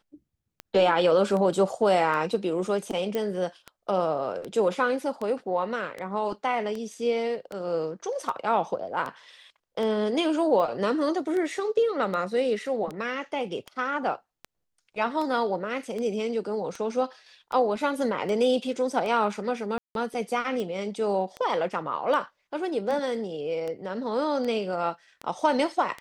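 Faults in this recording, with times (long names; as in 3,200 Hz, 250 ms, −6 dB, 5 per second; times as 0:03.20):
scratch tick 78 rpm −21 dBFS
0:03.15: click −17 dBFS
0:19.78–0:19.95: drop-out 172 ms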